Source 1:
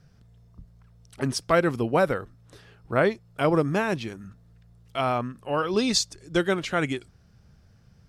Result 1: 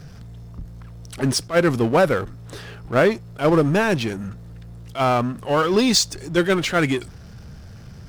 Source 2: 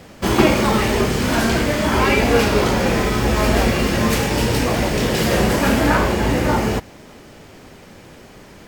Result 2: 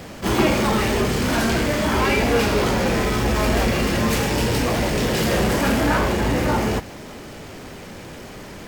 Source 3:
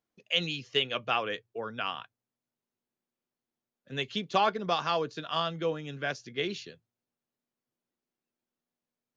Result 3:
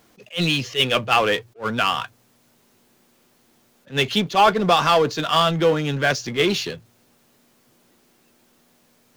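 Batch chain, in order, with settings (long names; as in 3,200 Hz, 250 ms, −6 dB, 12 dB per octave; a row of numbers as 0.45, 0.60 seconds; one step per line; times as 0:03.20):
power curve on the samples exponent 0.7
level that may rise only so fast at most 280 dB per second
loudness normalisation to −20 LKFS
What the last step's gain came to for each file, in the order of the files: +2.5, −6.5, +8.5 decibels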